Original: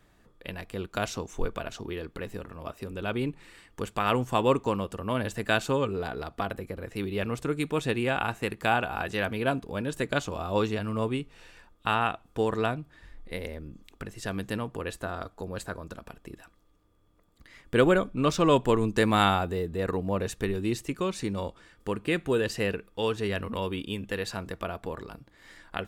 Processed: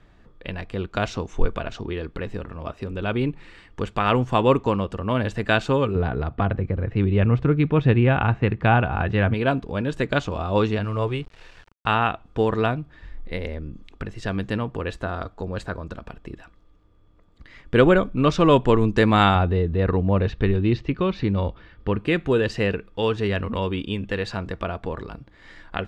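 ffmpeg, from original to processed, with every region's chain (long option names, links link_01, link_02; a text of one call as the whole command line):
ffmpeg -i in.wav -filter_complex "[0:a]asettb=1/sr,asplit=3[link_01][link_02][link_03];[link_01]atrim=end=5.954[link_04];[link_02]atrim=start=5.95:end=9.34,asetpts=PTS-STARTPTS,afade=type=in:duration=0.004:curve=qsin,afade=type=out:start_time=3.386:duration=0.004:curve=qsin,lowpass=2800,equalizer=frequency=110:width=0.79:gain=9.5[link_05];[link_03]atrim=start=9.336[link_06];[link_04][link_05]acrossfade=duration=0.004:curve1=hsin:curve2=qsin[link_07];[link_07][link_06]acrossfade=duration=0.004:curve1=qsin:curve2=hsin,asettb=1/sr,asplit=3[link_08][link_09][link_10];[link_08]atrim=end=10.844[link_11];[link_09]atrim=start=10.84:end=11.88,asetpts=PTS-STARTPTS,afade=type=in:duration=0.004:curve=qsin,afade=type=out:start_time=1.036:duration=0.004:curve=qsin,equalizer=frequency=240:width_type=o:width=0.46:gain=-12.5,aeval=exprs='val(0)*gte(abs(val(0)),0.00299)':channel_layout=same[link_12];[link_10]atrim=start=11.876[link_13];[link_11][link_12]acrossfade=duration=0.004:curve1=hsin:curve2=qsin[link_14];[link_14][link_13]acrossfade=duration=0.004:curve1=qsin:curve2=hsin,asettb=1/sr,asplit=3[link_15][link_16][link_17];[link_15]atrim=end=19.354[link_18];[link_16]atrim=start=19.35:end=21.99,asetpts=PTS-STARTPTS,afade=type=in:duration=0.004:curve=qsin,afade=type=out:start_time=2.636:duration=0.004:curve=qsin,lowpass=frequency=4500:width=0.5412,lowpass=frequency=4500:width=1.3066,equalizer=frequency=63:width_type=o:width=2.4:gain=6[link_19];[link_17]atrim=start=21.986[link_20];[link_18][link_19]acrossfade=duration=0.004:curve1=hsin:curve2=qsin[link_21];[link_21][link_20]acrossfade=duration=0.004:curve1=qsin:curve2=hsin,lowpass=4300,lowshelf=frequency=120:gain=6.5,volume=5dB" out.wav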